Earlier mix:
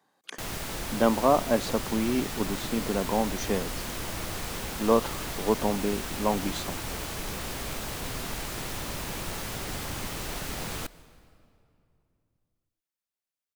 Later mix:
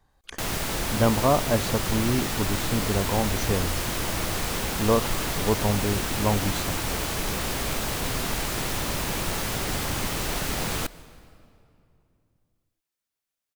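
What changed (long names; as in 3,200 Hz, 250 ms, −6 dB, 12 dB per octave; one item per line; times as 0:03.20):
speech: remove high-pass filter 190 Hz 24 dB per octave
background +6.5 dB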